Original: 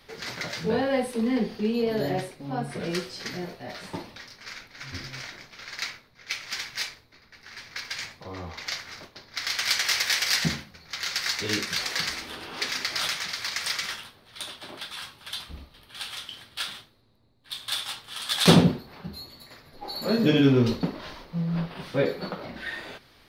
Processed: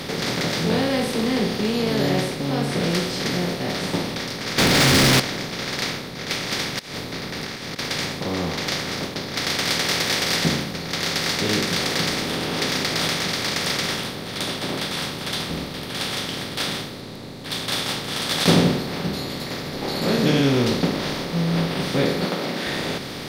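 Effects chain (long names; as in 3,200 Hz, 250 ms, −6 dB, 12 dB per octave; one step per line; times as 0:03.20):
compressor on every frequency bin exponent 0.4
0:04.58–0:05.20: leveller curve on the samples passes 5
0:06.79–0:07.79: compressor whose output falls as the input rises −28 dBFS, ratio −0.5
0:22.25–0:22.67: Bessel high-pass filter 210 Hz, order 2
level −3 dB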